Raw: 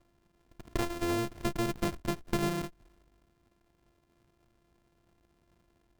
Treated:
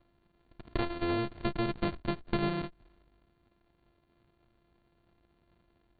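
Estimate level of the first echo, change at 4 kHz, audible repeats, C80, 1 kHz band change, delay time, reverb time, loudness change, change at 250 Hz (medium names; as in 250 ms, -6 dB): no echo, -1.0 dB, no echo, no reverb, 0.0 dB, no echo, no reverb, -0.5 dB, 0.0 dB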